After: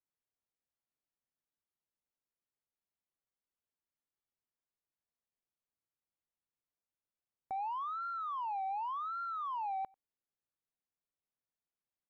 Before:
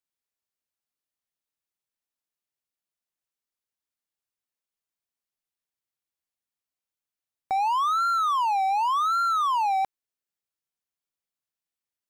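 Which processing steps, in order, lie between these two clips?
limiter -28.5 dBFS, peak gain reduction 10 dB; tape spacing loss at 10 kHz 44 dB; outdoor echo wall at 16 m, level -28 dB

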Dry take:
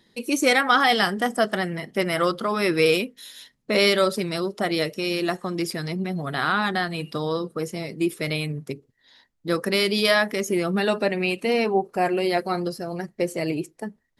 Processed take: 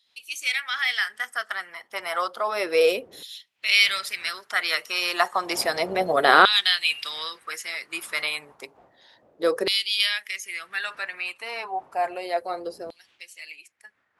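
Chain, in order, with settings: wind noise 83 Hz -21 dBFS; Doppler pass-by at 6.37, 6 m/s, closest 6 m; LFO high-pass saw down 0.31 Hz 430–3500 Hz; gain +8 dB

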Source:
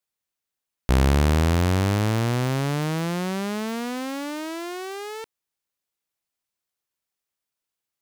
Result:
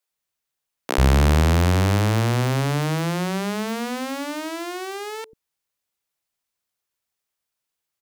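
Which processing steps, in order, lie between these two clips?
bands offset in time highs, lows 90 ms, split 280 Hz; gain +3 dB

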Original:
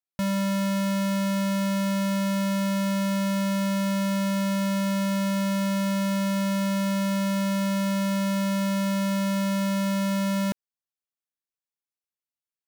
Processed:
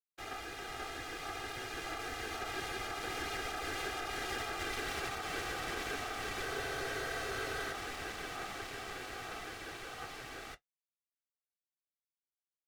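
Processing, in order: Doppler pass-by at 4.78, 12 m/s, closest 3.8 m; compressor 3:1, threshold -43 dBFS, peak gain reduction 12 dB; flange 0.62 Hz, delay 1.6 ms, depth 8.3 ms, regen +53%; whisperiser; limiter -39 dBFS, peak gain reduction 9.5 dB; weighting filter A; ring modulator 1000 Hz; spectral freeze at 6.48, 1.23 s; gain +17 dB

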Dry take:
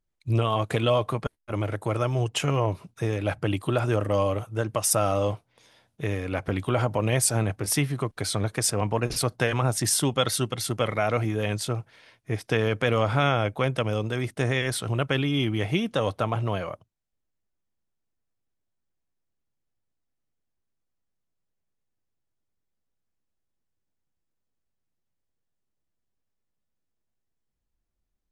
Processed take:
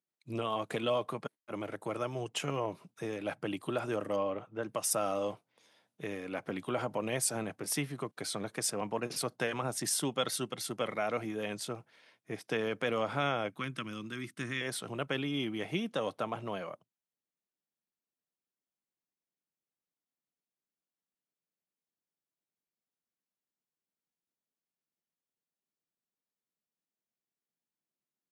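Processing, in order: 4.16–4.63 LPF 2900 Hz 12 dB/oct; 13.5–14.61 band shelf 610 Hz -15.5 dB 1.3 oct; HPF 160 Hz 24 dB/oct; gain -8 dB

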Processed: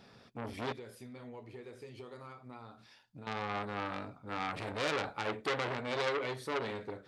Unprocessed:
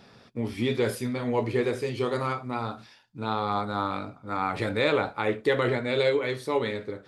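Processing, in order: 0.72–3.27 compressor 10:1, threshold -40 dBFS, peak gain reduction 19.5 dB; core saturation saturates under 3000 Hz; gain -5 dB

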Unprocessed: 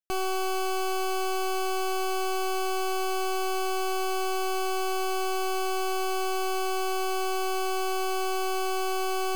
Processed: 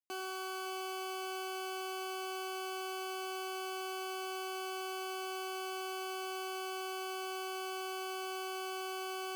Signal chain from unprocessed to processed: Chebyshev high-pass 260 Hz, order 3; resonator 500 Hz, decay 0.18 s, harmonics all, mix 70%; on a send: narrowing echo 0.56 s, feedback 48%, band-pass 1300 Hz, level -8.5 dB; on the sum: lo-fi delay 99 ms, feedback 55%, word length 11-bit, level -12 dB; gain -2 dB

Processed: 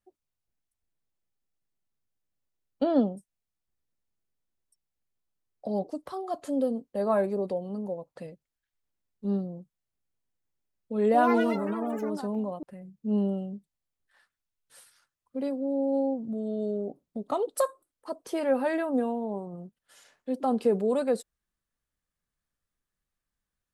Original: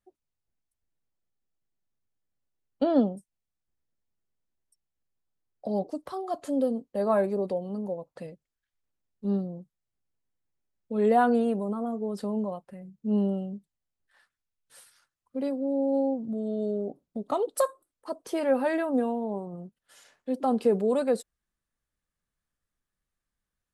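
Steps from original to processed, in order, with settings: 10.98–13.09 echoes that change speed 0.158 s, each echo +6 st, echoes 3, each echo -6 dB; gain -1 dB

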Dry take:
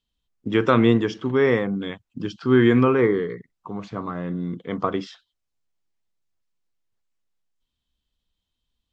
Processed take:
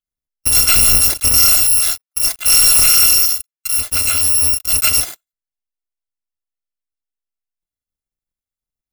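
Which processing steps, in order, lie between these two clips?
FFT order left unsorted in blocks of 256 samples; 1.63–3.79 HPF 800 Hz 12 dB/oct; sample leveller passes 5; gain -2 dB

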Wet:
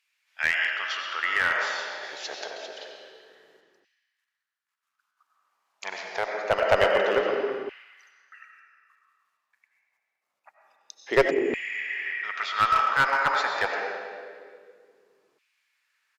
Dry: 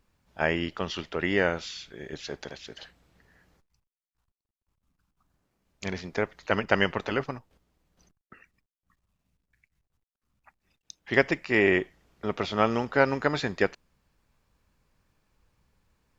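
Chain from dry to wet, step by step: on a send at -1 dB: reverb RT60 1.8 s, pre-delay 55 ms; on the sum: downsampling 32000 Hz; 2.03–2.51 high shelf 3300 Hz +5.5 dB; 11.33–12.06 spectral repair 300–6600 Hz after; LFO high-pass saw down 0.26 Hz 360–2400 Hz; one-sided clip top -16 dBFS

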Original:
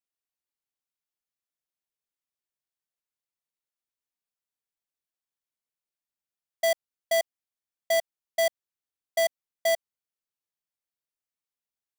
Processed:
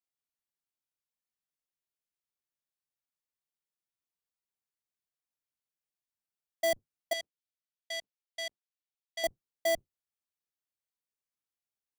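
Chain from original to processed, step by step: octaver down 1 oct, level -3 dB; 7.13–9.24 band-pass 3500 Hz, Q 1.1; gain -4.5 dB

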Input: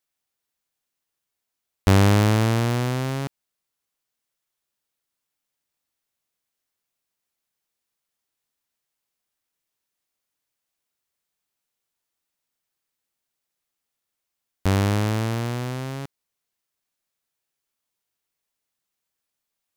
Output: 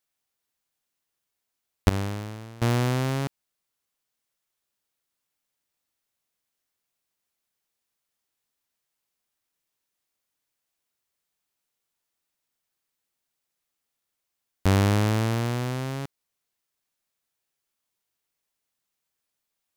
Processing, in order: 1.89–2.62 expander -6 dBFS

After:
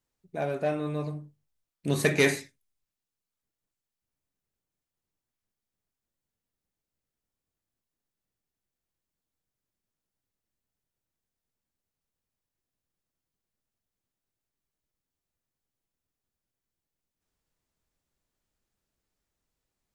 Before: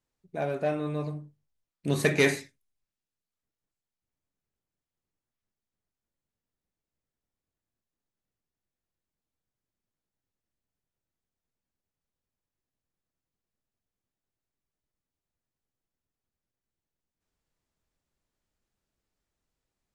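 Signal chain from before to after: high shelf 6700 Hz +3.5 dB

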